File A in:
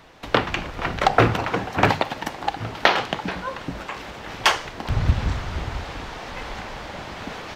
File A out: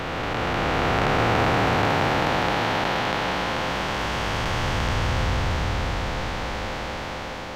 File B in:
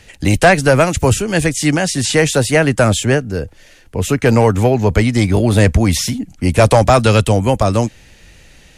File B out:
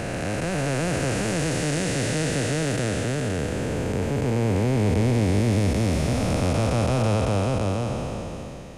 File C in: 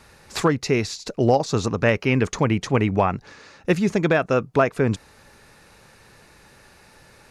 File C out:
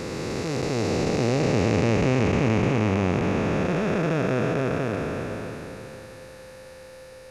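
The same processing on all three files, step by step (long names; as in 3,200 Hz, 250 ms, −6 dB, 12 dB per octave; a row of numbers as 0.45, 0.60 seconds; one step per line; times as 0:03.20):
spectrum smeared in time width 1,430 ms
steady tone 520 Hz −47 dBFS
feedback echo with a swinging delay time 102 ms, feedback 78%, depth 193 cents, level −19 dB
loudness normalisation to −24 LKFS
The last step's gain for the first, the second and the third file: +6.0, −5.0, +4.5 decibels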